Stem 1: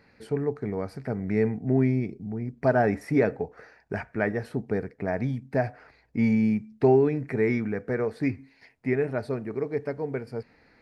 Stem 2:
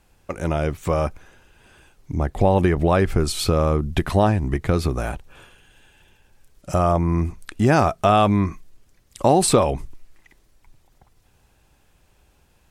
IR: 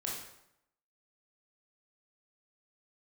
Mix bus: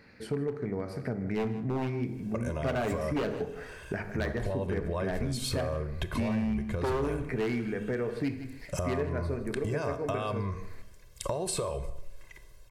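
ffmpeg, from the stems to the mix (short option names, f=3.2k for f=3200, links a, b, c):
-filter_complex "[0:a]equalizer=f=820:t=o:w=0.6:g=-4,bandreject=f=51.46:t=h:w=4,bandreject=f=102.92:t=h:w=4,bandreject=f=154.38:t=h:w=4,bandreject=f=205.84:t=h:w=4,bandreject=f=257.3:t=h:w=4,bandreject=f=308.76:t=h:w=4,bandreject=f=360.22:t=h:w=4,bandreject=f=411.68:t=h:w=4,bandreject=f=463.14:t=h:w=4,bandreject=f=514.6:t=h:w=4,bandreject=f=566.06:t=h:w=4,bandreject=f=617.52:t=h:w=4,bandreject=f=668.98:t=h:w=4,bandreject=f=720.44:t=h:w=4,bandreject=f=771.9:t=h:w=4,bandreject=f=823.36:t=h:w=4,bandreject=f=874.82:t=h:w=4,bandreject=f=926.28:t=h:w=4,bandreject=f=977.74:t=h:w=4,bandreject=f=1.0292k:t=h:w=4,bandreject=f=1.08066k:t=h:w=4,bandreject=f=1.13212k:t=h:w=4,bandreject=f=1.18358k:t=h:w=4,bandreject=f=1.23504k:t=h:w=4,bandreject=f=1.2865k:t=h:w=4,bandreject=f=1.33796k:t=h:w=4,bandreject=f=1.38942k:t=h:w=4,bandreject=f=1.44088k:t=h:w=4,aeval=exprs='0.119*(abs(mod(val(0)/0.119+3,4)-2)-1)':c=same,volume=2dB,asplit=3[a][b][c];[b]volume=-10dB[d];[c]volume=-14.5dB[e];[1:a]aecho=1:1:1.9:0.84,acompressor=threshold=-27dB:ratio=3,adelay=2050,volume=-1dB,asplit=2[f][g];[g]volume=-10.5dB[h];[2:a]atrim=start_sample=2205[i];[d][h]amix=inputs=2:normalize=0[j];[j][i]afir=irnorm=-1:irlink=0[k];[e]aecho=0:1:158:1[l];[a][f][k][l]amix=inputs=4:normalize=0,acompressor=threshold=-32dB:ratio=2.5"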